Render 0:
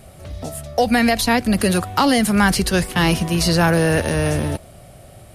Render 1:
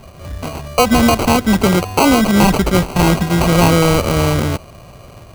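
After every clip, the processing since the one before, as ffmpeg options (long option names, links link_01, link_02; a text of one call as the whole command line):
ffmpeg -i in.wav -af "acrusher=samples=25:mix=1:aa=0.000001,volume=4.5dB" out.wav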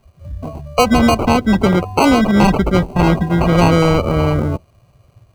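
ffmpeg -i in.wav -af "afftdn=noise_reduction=18:noise_floor=-21" out.wav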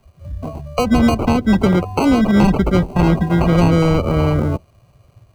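ffmpeg -i in.wav -filter_complex "[0:a]acrossover=split=410[link_01][link_02];[link_02]acompressor=threshold=-20dB:ratio=3[link_03];[link_01][link_03]amix=inputs=2:normalize=0" out.wav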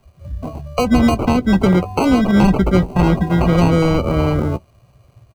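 ffmpeg -i in.wav -filter_complex "[0:a]asplit=2[link_01][link_02];[link_02]adelay=16,volume=-12.5dB[link_03];[link_01][link_03]amix=inputs=2:normalize=0" out.wav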